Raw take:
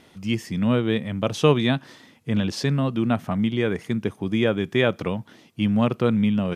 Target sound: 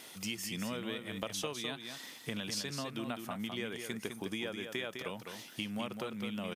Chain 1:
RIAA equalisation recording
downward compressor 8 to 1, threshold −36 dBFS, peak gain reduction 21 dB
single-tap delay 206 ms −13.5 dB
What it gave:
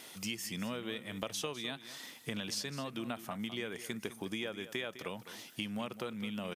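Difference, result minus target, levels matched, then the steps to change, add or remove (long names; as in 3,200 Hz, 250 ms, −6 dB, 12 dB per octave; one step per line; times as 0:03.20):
echo-to-direct −7 dB
change: single-tap delay 206 ms −6.5 dB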